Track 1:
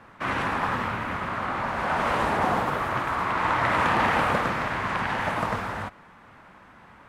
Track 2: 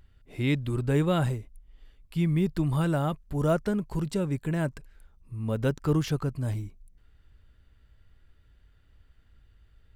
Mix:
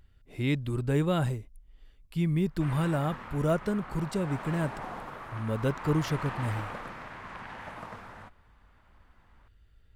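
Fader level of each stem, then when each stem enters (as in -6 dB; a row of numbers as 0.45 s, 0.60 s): -15.5 dB, -2.0 dB; 2.40 s, 0.00 s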